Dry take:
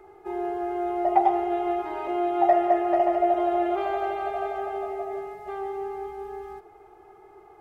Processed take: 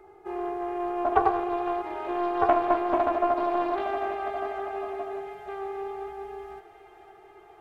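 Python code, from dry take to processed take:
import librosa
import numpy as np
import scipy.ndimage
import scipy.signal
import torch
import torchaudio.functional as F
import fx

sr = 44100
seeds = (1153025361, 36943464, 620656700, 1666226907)

y = fx.echo_wet_highpass(x, sr, ms=502, feedback_pct=77, hz=1700.0, wet_db=-11)
y = fx.doppler_dist(y, sr, depth_ms=0.31)
y = y * librosa.db_to_amplitude(-2.0)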